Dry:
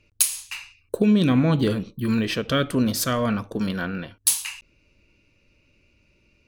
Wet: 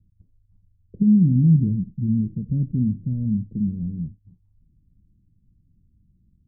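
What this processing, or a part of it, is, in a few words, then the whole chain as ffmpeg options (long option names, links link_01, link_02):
the neighbour's flat through the wall: -filter_complex "[0:a]asettb=1/sr,asplit=3[link_01][link_02][link_03];[link_01]atrim=end=3.674[link_04];[link_02]atrim=start=3.67:end=4.13,asetpts=PTS-STARTPTS,afade=type=in:duration=0.004:curve=qsin,afade=type=out:start_time=0.456:duration=0.004:curve=qsin,asplit=2[link_05][link_06];[link_06]adelay=13,volume=-3.5dB[link_07];[link_05][link_07]amix=inputs=2:normalize=0,atrim=end_sample=20286[link_08];[link_03]atrim=start=4.126[link_09];[link_04][link_08]acrossfade=duration=0.004:curve1=hsin:curve2=qsin[link_10];[link_10][link_09]acrossfade=duration=0.004:curve1=qsin:curve2=hsin,lowpass=frequency=200:width=0.5412,lowpass=frequency=200:width=1.3066,equalizer=frequency=170:width_type=o:width=0.77:gain=4,volume=4dB"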